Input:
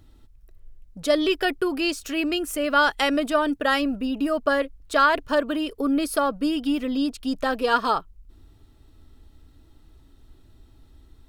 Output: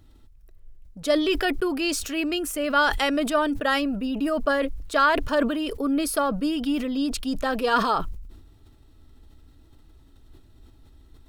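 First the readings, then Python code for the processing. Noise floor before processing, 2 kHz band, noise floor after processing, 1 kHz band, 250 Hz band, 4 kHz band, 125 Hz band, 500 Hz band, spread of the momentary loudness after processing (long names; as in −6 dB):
−54 dBFS, −1.0 dB, −53 dBFS, −1.0 dB, −0.5 dB, −1.0 dB, can't be measured, −1.0 dB, 6 LU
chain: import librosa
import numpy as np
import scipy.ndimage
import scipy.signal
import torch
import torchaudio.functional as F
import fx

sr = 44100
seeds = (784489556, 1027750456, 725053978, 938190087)

y = fx.sustainer(x, sr, db_per_s=54.0)
y = F.gain(torch.from_numpy(y), -1.5).numpy()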